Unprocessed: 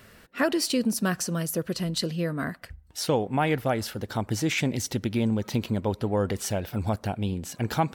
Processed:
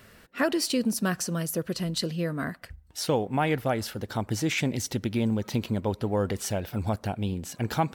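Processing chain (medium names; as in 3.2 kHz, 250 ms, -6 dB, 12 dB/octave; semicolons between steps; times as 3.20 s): short-mantissa float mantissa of 6-bit; trim -1 dB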